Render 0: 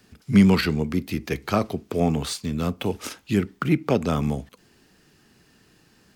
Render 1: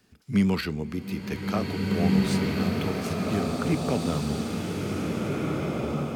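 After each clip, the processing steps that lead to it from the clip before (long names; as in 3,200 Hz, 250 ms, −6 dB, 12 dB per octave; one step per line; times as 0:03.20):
slow-attack reverb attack 1,920 ms, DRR −3 dB
level −7 dB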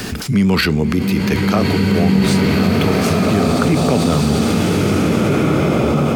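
envelope flattener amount 70%
level +6.5 dB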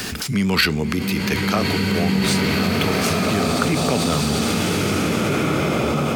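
tilt shelving filter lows −4 dB
level −2.5 dB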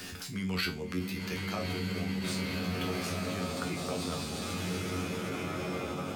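tuned comb filter 91 Hz, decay 0.28 s, harmonics all, mix 90%
level −7 dB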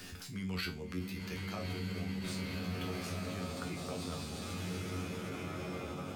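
low-shelf EQ 79 Hz +10 dB
level −6.5 dB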